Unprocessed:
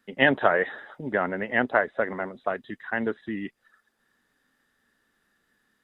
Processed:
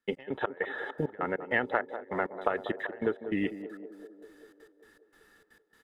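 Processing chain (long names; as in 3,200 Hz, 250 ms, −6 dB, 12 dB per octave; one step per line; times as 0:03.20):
comb filter 2.3 ms, depth 38%
downward compressor 16 to 1, threshold −31 dBFS, peak gain reduction 18 dB
gate pattern ".x..xx..xxxx" 199 BPM −24 dB
feedback echo with a band-pass in the loop 194 ms, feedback 73%, band-pass 480 Hz, level −9.5 dB
level +7.5 dB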